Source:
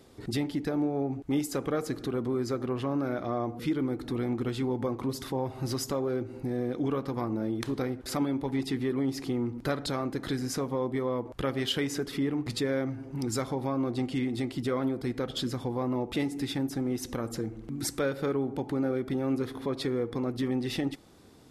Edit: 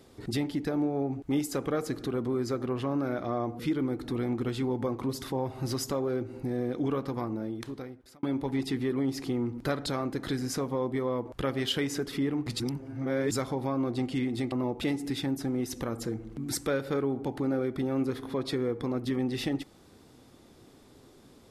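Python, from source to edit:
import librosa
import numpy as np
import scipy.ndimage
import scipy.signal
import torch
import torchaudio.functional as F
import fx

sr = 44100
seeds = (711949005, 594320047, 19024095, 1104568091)

y = fx.edit(x, sr, fx.fade_out_span(start_s=7.05, length_s=1.18),
    fx.reverse_span(start_s=12.6, length_s=0.71),
    fx.cut(start_s=14.52, length_s=1.32), tone=tone)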